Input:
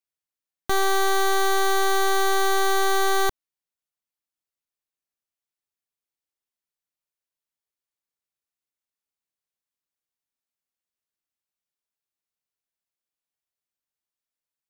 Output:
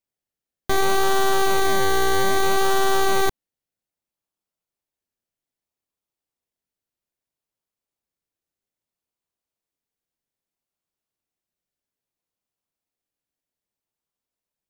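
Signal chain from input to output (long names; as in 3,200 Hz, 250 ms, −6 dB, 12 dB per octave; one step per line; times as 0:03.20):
in parallel at −7 dB: sample-and-hold swept by an LFO 28×, swing 60% 0.62 Hz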